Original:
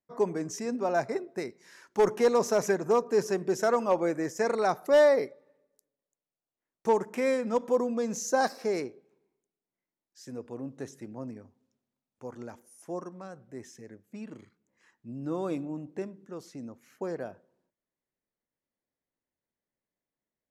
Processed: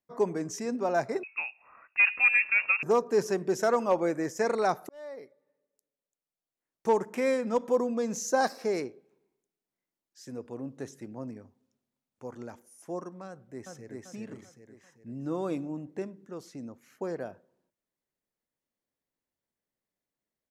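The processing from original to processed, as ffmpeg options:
-filter_complex "[0:a]asettb=1/sr,asplit=3[a][b][c];[a]atrim=end=1.234[d];[b]atrim=start=1.23:end=2.83,asetpts=PTS-STARTPTS,afade=t=in:d=0.004:c=qsin,afade=t=out:st=1.596:d=0.004:c=qsin,lowpass=f=2.5k:t=q:w=0.5098,lowpass=f=2.5k:t=q:w=0.6013,lowpass=f=2.5k:t=q:w=0.9,lowpass=f=2.5k:t=q:w=2.563,afreqshift=-2900[e];[c]atrim=start=2.826[f];[d][e]acrossfade=d=0.004:c1=hsin:c2=qsin[g];[g][f]acrossfade=d=0.004:c1=qsin:c2=hsin,asplit=2[h][i];[i]afade=t=in:st=13.27:d=0.01,afade=t=out:st=14.05:d=0.01,aecho=0:1:390|780|1170|1560|1950|2340:0.891251|0.401063|0.180478|0.0812152|0.0365469|0.0164461[j];[h][j]amix=inputs=2:normalize=0,asplit=2[k][l];[k]atrim=end=4.89,asetpts=PTS-STARTPTS,afade=t=out:st=4.886:d=0.004:c=hsin[m];[l]atrim=start=4.89,asetpts=PTS-STARTPTS,afade=t=in:d=2.07[n];[m][n]concat=n=2:v=0:a=1"

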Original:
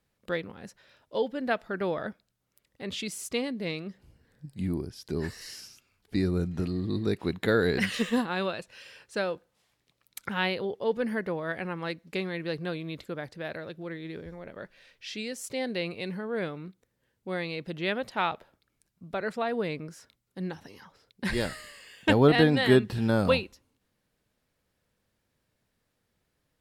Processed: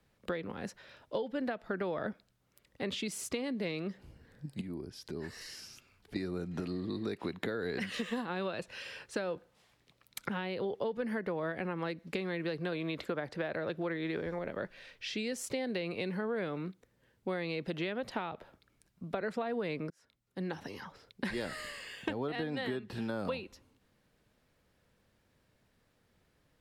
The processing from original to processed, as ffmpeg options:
-filter_complex "[0:a]asettb=1/sr,asplit=3[a][b][c];[a]atrim=end=4.614[d];[b]atrim=start=4.61:end=6.16,asetpts=PTS-STARTPTS,afade=t=in:d=0.004:c=qsin,afade=t=out:st=1.546:d=0.004:c=qsin,acompressor=threshold=-51dB:ratio=2:attack=3.2:release=140:knee=1:detection=peak[e];[c]atrim=start=6.156[f];[d][e]acrossfade=d=0.004:c1=hsin:c2=qsin[g];[g][f]acrossfade=d=0.004:c1=qsin:c2=hsin,asettb=1/sr,asplit=3[h][i][j];[h]atrim=end=12.724[k];[i]atrim=start=12.72:end=14.39,asetpts=PTS-STARTPTS,afade=t=in:d=0.004:c=qsin,afade=t=out:st=1.666:d=0.004:c=qsin,equalizer=f=1.1k:w=0.37:g=5.5[l];[j]atrim=start=14.386[m];[k][l]acrossfade=d=0.004:c1=hsin:c2=qsin[n];[n][m]acrossfade=d=0.004:c1=qsin:c2=hsin,asplit=2[o][p];[o]atrim=end=19.9,asetpts=PTS-STARTPTS,afade=t=out:st=19.896:d=0.004:c=hsin[q];[p]atrim=start=19.9,asetpts=PTS-STARTPTS,afade=t=in:d=0.79[r];[q][r]concat=n=2:v=0:a=1,acompressor=threshold=-33dB:ratio=12,highshelf=f=5.4k:g=-7,acrossover=split=180|560[s][t][u];[s]acompressor=threshold=-56dB:ratio=4[v];[t]acompressor=threshold=-41dB:ratio=4[w];[u]acompressor=threshold=-43dB:ratio=4[x];[v][w][x]amix=inputs=3:normalize=0,volume=5.5dB"

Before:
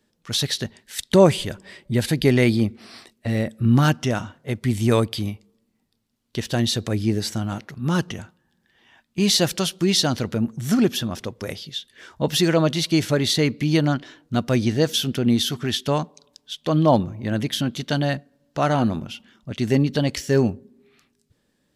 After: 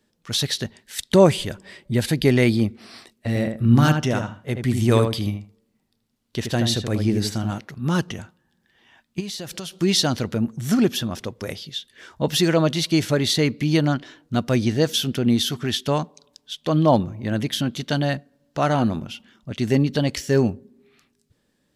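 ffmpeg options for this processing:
-filter_complex "[0:a]asettb=1/sr,asplit=3[a][b][c];[a]atrim=end=3.284[d];[b]atrim=start=3.28:end=7.51,asetpts=PTS-STARTPTS,afade=t=in:d=0.004:c=qsin,afade=t=out:st=4.226:d=0.004:c=qsin,asplit=2[e][f];[f]adelay=78,lowpass=f=2.1k:p=1,volume=-5.5dB,asplit=2[g][h];[h]adelay=78,lowpass=f=2.1k:p=1,volume=0.16,asplit=2[i][j];[j]adelay=78,lowpass=f=2.1k:p=1,volume=0.16[k];[e][g][i][k]amix=inputs=4:normalize=0,atrim=end_sample=186543[l];[c]atrim=start=7.506[m];[d][l]acrossfade=d=0.004:c1=hsin:c2=qsin[n];[n][m]acrossfade=d=0.004:c1=qsin:c2=hsin,asplit=3[o][p][q];[o]afade=t=out:st=9.19:d=0.02[r];[p]acompressor=threshold=-28dB:ratio=12:attack=3.2:release=140:knee=1:detection=peak,afade=t=in:st=9.19:d=0.02,afade=t=out:st=9.77:d=0.02[s];[q]afade=t=in:st=9.77:d=0.02[t];[r][s][t]amix=inputs=3:normalize=0"

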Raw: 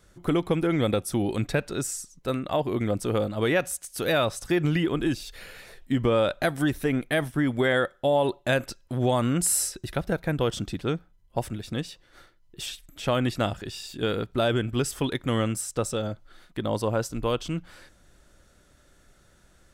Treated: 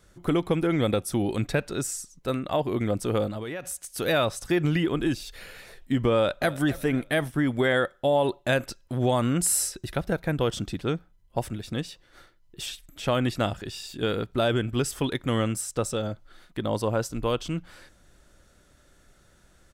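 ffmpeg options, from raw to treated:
-filter_complex "[0:a]asettb=1/sr,asplit=3[a][b][c];[a]atrim=end=3.364[d];[b]atrim=start=3.36:end=3.92,asetpts=PTS-STARTPTS,afade=t=in:d=0.004:c=qsin,afade=t=out:st=0.556:d=0.004:c=qsin,acompressor=threshold=-29dB:ratio=16:attack=3.2:release=140:knee=1:detection=peak[e];[c]atrim=start=3.916[f];[d][e]acrossfade=d=0.004:c1=hsin:c2=qsin[g];[g][f]acrossfade=d=0.004:c1=qsin:c2=hsin,asplit=2[h][i];[i]afade=t=in:st=6.14:d=0.01,afade=t=out:st=6.68:d=0.01,aecho=0:1:270|540|810:0.141254|0.0494388|0.0173036[j];[h][j]amix=inputs=2:normalize=0"

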